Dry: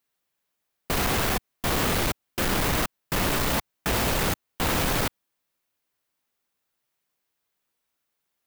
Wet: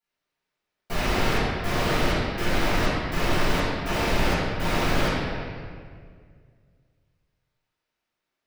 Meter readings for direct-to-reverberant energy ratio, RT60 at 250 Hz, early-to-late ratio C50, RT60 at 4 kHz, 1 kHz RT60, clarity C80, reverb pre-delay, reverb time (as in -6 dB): -15.5 dB, 2.2 s, -3.0 dB, 1.4 s, 1.8 s, 0.0 dB, 6 ms, 2.0 s